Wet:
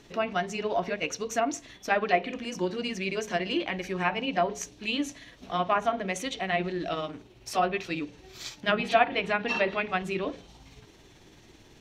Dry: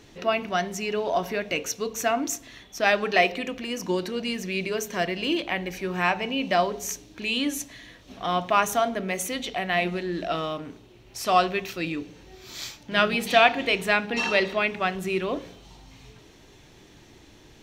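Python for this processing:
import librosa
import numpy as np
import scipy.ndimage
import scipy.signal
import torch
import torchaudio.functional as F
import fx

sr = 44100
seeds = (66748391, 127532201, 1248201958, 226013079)

y = fx.env_lowpass_down(x, sr, base_hz=1900.0, full_db=-17.5)
y = fx.stretch_grains(y, sr, factor=0.67, grain_ms=110.0)
y = y * librosa.db_to_amplitude(-1.5)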